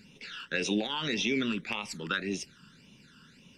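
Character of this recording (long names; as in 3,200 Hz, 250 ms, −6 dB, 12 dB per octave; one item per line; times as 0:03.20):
phaser sweep stages 12, 1.8 Hz, lowest notch 680–1,500 Hz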